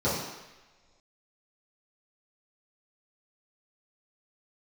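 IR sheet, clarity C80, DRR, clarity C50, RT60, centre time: 4.5 dB, -11.5 dB, 1.5 dB, not exponential, 64 ms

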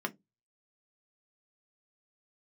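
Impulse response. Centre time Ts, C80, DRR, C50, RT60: 5 ms, 36.5 dB, 3.0 dB, 24.5 dB, 0.15 s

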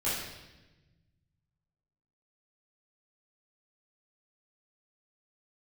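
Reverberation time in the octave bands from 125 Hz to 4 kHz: 2.5, 1.7, 1.2, 0.95, 1.1, 1.0 s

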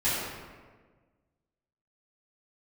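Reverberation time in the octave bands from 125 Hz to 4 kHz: 1.8, 1.7, 1.6, 1.3, 1.2, 0.90 s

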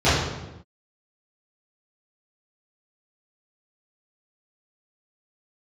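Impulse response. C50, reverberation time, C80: 0.0 dB, not exponential, 3.0 dB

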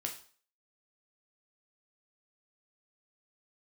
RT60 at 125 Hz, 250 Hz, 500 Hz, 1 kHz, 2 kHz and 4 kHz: 0.40, 0.40, 0.45, 0.45, 0.40, 0.45 s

